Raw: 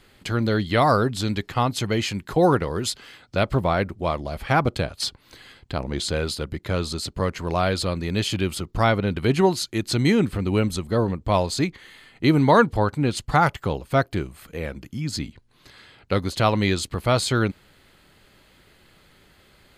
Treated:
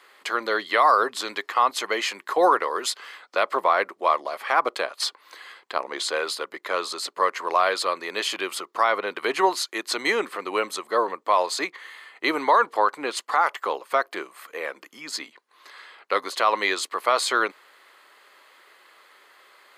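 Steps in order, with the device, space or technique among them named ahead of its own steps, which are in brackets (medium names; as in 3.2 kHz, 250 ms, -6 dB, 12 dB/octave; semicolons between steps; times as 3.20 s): laptop speaker (high-pass 410 Hz 24 dB/octave; peaking EQ 1.1 kHz +11 dB 0.5 oct; peaking EQ 1.9 kHz +5.5 dB 0.47 oct; peak limiter -8.5 dBFS, peak gain reduction 9.5 dB)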